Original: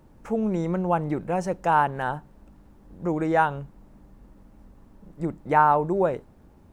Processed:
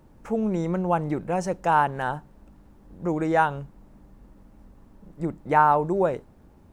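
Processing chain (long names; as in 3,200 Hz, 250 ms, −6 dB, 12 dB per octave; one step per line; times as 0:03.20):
dynamic equaliser 6,500 Hz, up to +4 dB, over −48 dBFS, Q 0.87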